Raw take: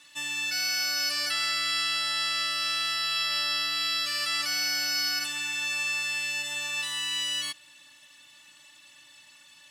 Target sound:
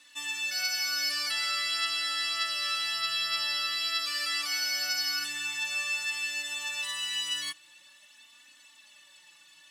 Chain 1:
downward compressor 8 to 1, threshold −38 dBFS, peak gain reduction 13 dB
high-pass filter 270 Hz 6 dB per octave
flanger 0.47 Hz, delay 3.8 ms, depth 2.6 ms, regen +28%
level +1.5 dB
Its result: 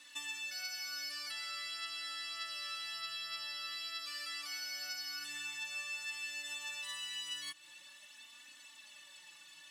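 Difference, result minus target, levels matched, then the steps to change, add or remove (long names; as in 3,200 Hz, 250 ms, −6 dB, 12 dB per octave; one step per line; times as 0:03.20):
downward compressor: peak gain reduction +13 dB
remove: downward compressor 8 to 1, threshold −38 dBFS, peak gain reduction 13 dB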